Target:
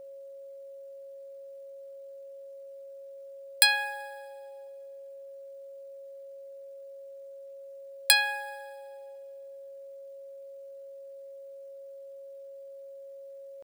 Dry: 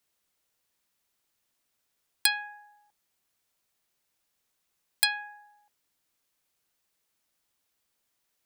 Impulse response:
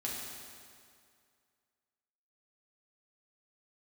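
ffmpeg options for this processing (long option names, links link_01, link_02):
-filter_complex "[0:a]aeval=exprs='val(0)+0.00501*sin(2*PI*550*n/s)':channel_layout=same,atempo=0.62,asplit=2[link_01][link_02];[1:a]atrim=start_sample=2205,adelay=24[link_03];[link_02][link_03]afir=irnorm=-1:irlink=0,volume=-21.5dB[link_04];[link_01][link_04]amix=inputs=2:normalize=0,volume=3dB"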